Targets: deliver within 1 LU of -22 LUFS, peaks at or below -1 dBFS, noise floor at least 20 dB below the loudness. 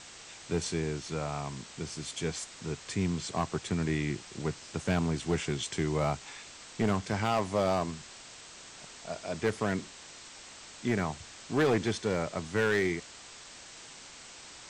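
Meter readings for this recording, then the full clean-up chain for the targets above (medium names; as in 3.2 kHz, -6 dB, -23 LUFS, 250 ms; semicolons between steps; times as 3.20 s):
clipped samples 0.7%; clipping level -21.0 dBFS; noise floor -49 dBFS; noise floor target -52 dBFS; loudness -32.0 LUFS; peak level -21.0 dBFS; loudness target -22.0 LUFS
-> clip repair -21 dBFS; noise print and reduce 6 dB; trim +10 dB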